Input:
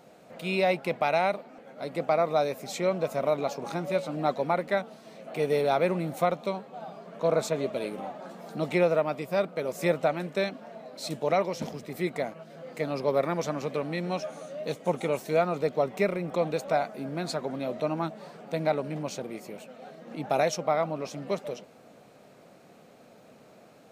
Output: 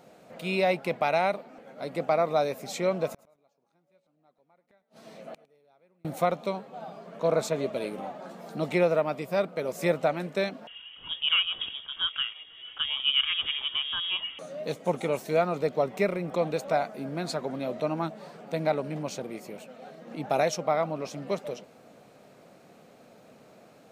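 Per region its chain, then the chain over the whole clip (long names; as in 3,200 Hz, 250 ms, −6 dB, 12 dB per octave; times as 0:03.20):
0:03.08–0:06.05: gate with flip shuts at −29 dBFS, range −39 dB + repeating echo 106 ms, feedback 17%, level −19.5 dB
0:10.67–0:14.39: voice inversion scrambler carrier 3,500 Hz + one half of a high-frequency compander decoder only
whole clip: no processing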